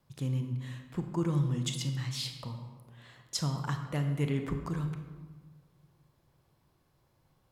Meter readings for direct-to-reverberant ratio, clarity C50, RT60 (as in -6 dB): 5.5 dB, 7.5 dB, 1.4 s